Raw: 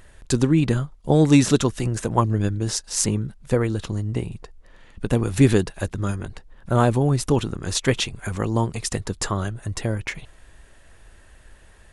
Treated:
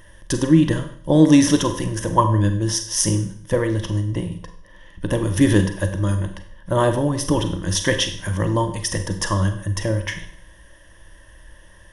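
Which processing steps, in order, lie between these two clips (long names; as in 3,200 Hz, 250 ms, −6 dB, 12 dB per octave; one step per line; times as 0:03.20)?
EQ curve with evenly spaced ripples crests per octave 1.2, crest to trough 13 dB
four-comb reverb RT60 0.58 s, combs from 32 ms, DRR 7 dB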